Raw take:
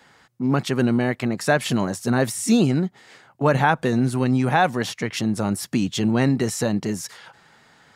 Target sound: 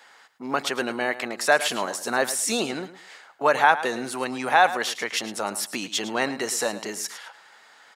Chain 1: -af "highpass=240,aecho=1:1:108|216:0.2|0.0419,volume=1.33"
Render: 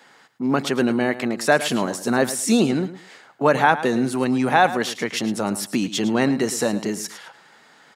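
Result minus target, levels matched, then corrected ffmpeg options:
250 Hz band +9.0 dB
-af "highpass=600,aecho=1:1:108|216:0.2|0.0419,volume=1.33"

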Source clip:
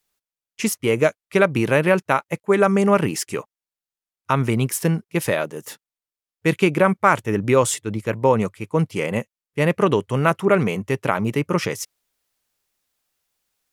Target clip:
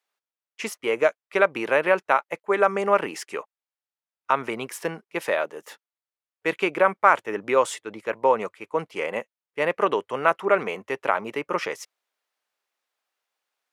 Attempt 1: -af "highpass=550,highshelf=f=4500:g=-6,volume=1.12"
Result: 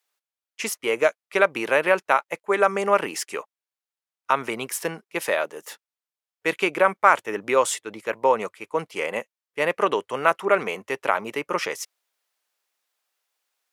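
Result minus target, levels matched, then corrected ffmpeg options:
8 kHz band +7.0 dB
-af "highpass=550,highshelf=f=4500:g=-16,volume=1.12"

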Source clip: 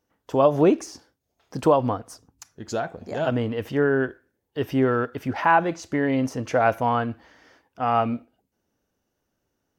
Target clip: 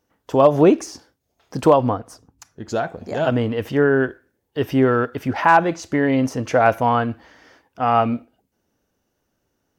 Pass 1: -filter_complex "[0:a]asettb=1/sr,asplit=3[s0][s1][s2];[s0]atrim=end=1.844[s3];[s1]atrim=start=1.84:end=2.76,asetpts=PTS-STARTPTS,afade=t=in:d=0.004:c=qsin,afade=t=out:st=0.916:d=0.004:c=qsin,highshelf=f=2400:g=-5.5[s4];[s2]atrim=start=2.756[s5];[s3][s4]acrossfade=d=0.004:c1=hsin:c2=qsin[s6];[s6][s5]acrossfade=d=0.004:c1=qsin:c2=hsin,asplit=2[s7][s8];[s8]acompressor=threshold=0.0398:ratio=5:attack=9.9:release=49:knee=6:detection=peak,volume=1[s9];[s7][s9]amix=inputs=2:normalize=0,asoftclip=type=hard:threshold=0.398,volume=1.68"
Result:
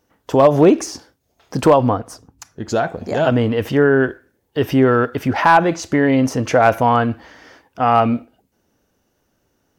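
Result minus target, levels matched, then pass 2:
compression: peak gain reduction +13.5 dB
-filter_complex "[0:a]asettb=1/sr,asplit=3[s0][s1][s2];[s0]atrim=end=1.844[s3];[s1]atrim=start=1.84:end=2.76,asetpts=PTS-STARTPTS,afade=t=in:d=0.004:c=qsin,afade=t=out:st=0.916:d=0.004:c=qsin,highshelf=f=2400:g=-5.5[s4];[s2]atrim=start=2.756[s5];[s3][s4]acrossfade=d=0.004:c1=hsin:c2=qsin[s6];[s6][s5]acrossfade=d=0.004:c1=qsin:c2=hsin,asoftclip=type=hard:threshold=0.398,volume=1.68"

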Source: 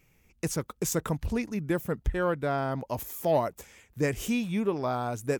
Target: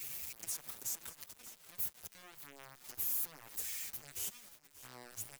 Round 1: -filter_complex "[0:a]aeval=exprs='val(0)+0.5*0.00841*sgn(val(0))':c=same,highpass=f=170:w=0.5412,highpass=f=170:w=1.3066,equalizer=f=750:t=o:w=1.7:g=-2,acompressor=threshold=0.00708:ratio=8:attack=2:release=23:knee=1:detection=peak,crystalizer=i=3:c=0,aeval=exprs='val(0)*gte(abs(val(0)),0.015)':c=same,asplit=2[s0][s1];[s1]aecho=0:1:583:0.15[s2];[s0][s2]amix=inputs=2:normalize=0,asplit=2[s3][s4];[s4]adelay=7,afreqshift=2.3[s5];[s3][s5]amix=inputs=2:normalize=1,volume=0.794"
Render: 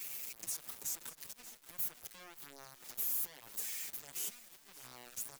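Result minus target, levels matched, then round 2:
125 Hz band -4.0 dB
-filter_complex "[0:a]aeval=exprs='val(0)+0.5*0.00841*sgn(val(0))':c=same,highpass=f=58:w=0.5412,highpass=f=58:w=1.3066,equalizer=f=750:t=o:w=1.7:g=-2,acompressor=threshold=0.00708:ratio=8:attack=2:release=23:knee=1:detection=peak,crystalizer=i=3:c=0,aeval=exprs='val(0)*gte(abs(val(0)),0.015)':c=same,asplit=2[s0][s1];[s1]aecho=0:1:583:0.15[s2];[s0][s2]amix=inputs=2:normalize=0,asplit=2[s3][s4];[s4]adelay=7,afreqshift=2.3[s5];[s3][s5]amix=inputs=2:normalize=1,volume=0.794"

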